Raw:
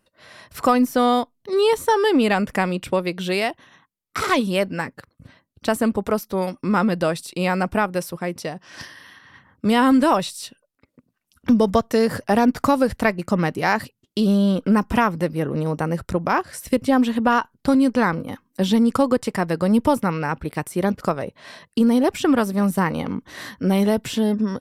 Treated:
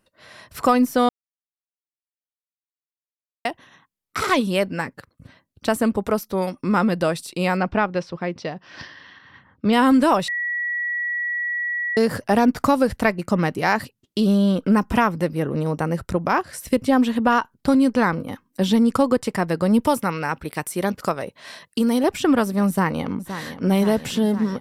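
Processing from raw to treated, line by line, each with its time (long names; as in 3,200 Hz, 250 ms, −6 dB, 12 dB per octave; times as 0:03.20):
0:01.09–0:03.45: silence
0:07.57–0:09.73: low-pass filter 4,900 Hz 24 dB per octave
0:10.28–0:11.97: beep over 1,930 Hz −22 dBFS
0:19.82–0:22.04: spectral tilt +1.5 dB per octave
0:22.67–0:23.65: delay throw 520 ms, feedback 75%, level −11 dB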